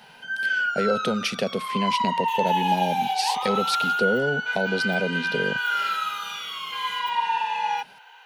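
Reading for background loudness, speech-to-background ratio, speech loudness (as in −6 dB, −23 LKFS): −25.5 LKFS, −2.0 dB, −27.5 LKFS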